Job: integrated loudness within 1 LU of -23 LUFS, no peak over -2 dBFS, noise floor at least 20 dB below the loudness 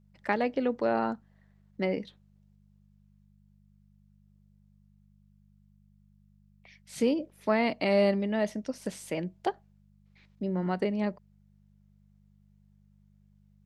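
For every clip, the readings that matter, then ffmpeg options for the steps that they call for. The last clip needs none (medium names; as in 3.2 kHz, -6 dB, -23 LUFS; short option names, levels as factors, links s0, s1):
hum 50 Hz; highest harmonic 200 Hz; hum level -50 dBFS; loudness -30.0 LUFS; peak level -11.5 dBFS; loudness target -23.0 LUFS
-> -af "bandreject=f=50:t=h:w=4,bandreject=f=100:t=h:w=4,bandreject=f=150:t=h:w=4,bandreject=f=200:t=h:w=4"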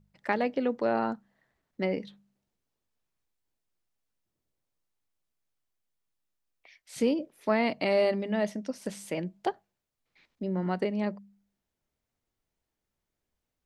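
hum not found; loudness -30.5 LUFS; peak level -11.5 dBFS; loudness target -23.0 LUFS
-> -af "volume=2.37"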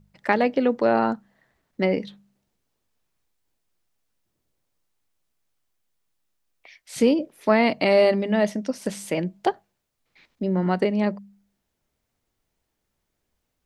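loudness -23.0 LUFS; peak level -4.0 dBFS; noise floor -78 dBFS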